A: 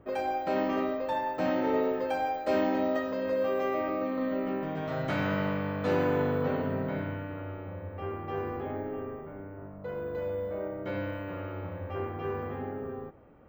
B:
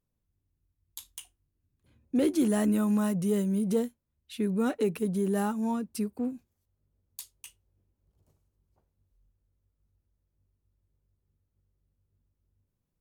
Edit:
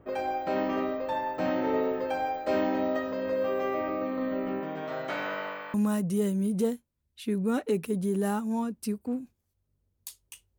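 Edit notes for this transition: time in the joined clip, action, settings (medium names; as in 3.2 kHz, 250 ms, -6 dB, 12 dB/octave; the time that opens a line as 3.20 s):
A
4.60–5.74 s: high-pass 180 Hz -> 920 Hz
5.74 s: go over to B from 2.86 s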